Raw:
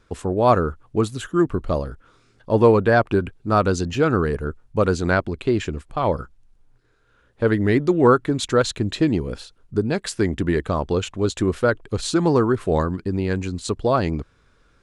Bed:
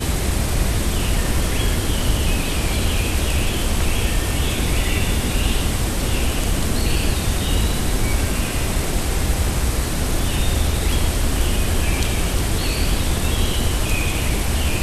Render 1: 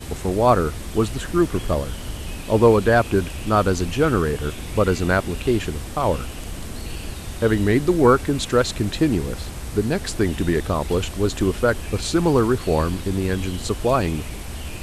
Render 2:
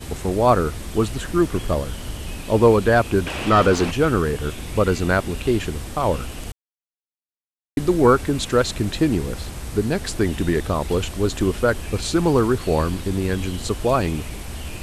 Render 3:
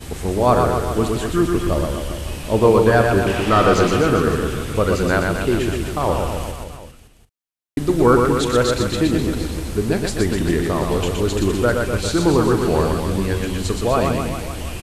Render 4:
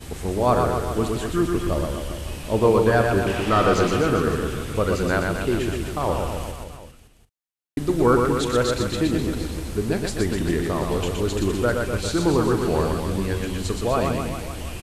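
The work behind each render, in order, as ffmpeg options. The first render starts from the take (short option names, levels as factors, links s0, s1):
-filter_complex "[1:a]volume=0.251[s0];[0:a][s0]amix=inputs=2:normalize=0"
-filter_complex "[0:a]asplit=3[s0][s1][s2];[s0]afade=t=out:st=3.26:d=0.02[s3];[s1]asplit=2[s4][s5];[s5]highpass=f=720:p=1,volume=11.2,asoftclip=type=tanh:threshold=0.531[s6];[s4][s6]amix=inputs=2:normalize=0,lowpass=f=1600:p=1,volume=0.501,afade=t=in:st=3.26:d=0.02,afade=t=out:st=3.9:d=0.02[s7];[s2]afade=t=in:st=3.9:d=0.02[s8];[s3][s7][s8]amix=inputs=3:normalize=0,asplit=3[s9][s10][s11];[s9]atrim=end=6.52,asetpts=PTS-STARTPTS,afade=t=out:st=6.516:d=0.004:c=hsin[s12];[s10]atrim=start=6.52:end=7.77,asetpts=PTS-STARTPTS,volume=0[s13];[s11]atrim=start=7.77,asetpts=PTS-STARTPTS,afade=t=in:d=0.004:c=hsin[s14];[s12][s13][s14]concat=n=3:v=0:a=1"
-filter_complex "[0:a]asplit=2[s0][s1];[s1]adelay=41,volume=0.224[s2];[s0][s2]amix=inputs=2:normalize=0,aecho=1:1:120|252|397.2|556.9|732.6:0.631|0.398|0.251|0.158|0.1"
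-af "volume=0.631"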